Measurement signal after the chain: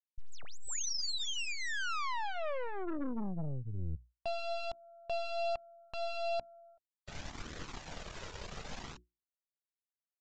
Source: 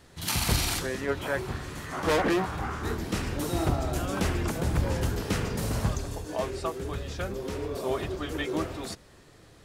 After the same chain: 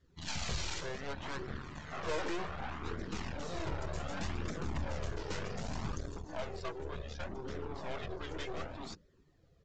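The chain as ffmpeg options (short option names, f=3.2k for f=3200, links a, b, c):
-af "equalizer=f=110:t=o:w=0.24:g=-8,bandreject=f=60:t=h:w=6,bandreject=f=120:t=h:w=6,bandreject=f=180:t=h:w=6,bandreject=f=240:t=h:w=6,bandreject=f=300:t=h:w=6,bandreject=f=360:t=h:w=6,afftdn=nr=14:nf=-48,aeval=exprs='0.224*(cos(1*acos(clip(val(0)/0.224,-1,1)))-cos(1*PI/2))+0.00794*(cos(3*acos(clip(val(0)/0.224,-1,1)))-cos(3*PI/2))+0.0355*(cos(4*acos(clip(val(0)/0.224,-1,1)))-cos(4*PI/2))+0.0794*(cos(6*acos(clip(val(0)/0.224,-1,1)))-cos(6*PI/2))+0.0794*(cos(8*acos(clip(val(0)/0.224,-1,1)))-cos(8*PI/2))':c=same,aresample=16000,asoftclip=type=tanh:threshold=-24dB,aresample=44100,flanger=delay=0.5:depth=1.7:regen=-33:speed=0.66:shape=triangular,volume=-3dB"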